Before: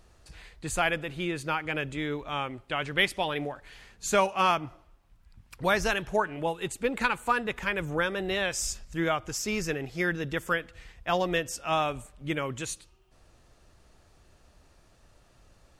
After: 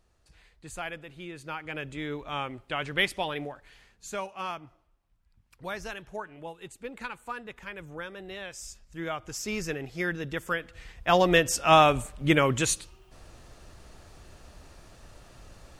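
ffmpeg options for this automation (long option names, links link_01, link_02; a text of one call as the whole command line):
ffmpeg -i in.wav -af "volume=19dB,afade=type=in:start_time=1.31:duration=1.06:silence=0.354813,afade=type=out:start_time=3.13:duration=1:silence=0.316228,afade=type=in:start_time=8.81:duration=0.71:silence=0.354813,afade=type=in:start_time=10.56:duration=1.12:silence=0.281838" out.wav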